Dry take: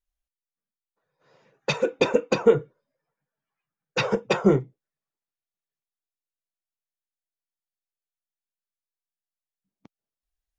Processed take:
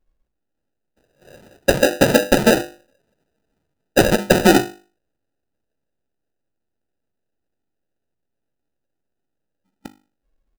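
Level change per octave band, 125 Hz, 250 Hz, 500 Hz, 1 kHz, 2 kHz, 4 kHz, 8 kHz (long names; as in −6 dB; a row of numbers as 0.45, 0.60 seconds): +6.0 dB, +9.0 dB, +5.5 dB, +9.5 dB, +10.5 dB, +9.5 dB, can't be measured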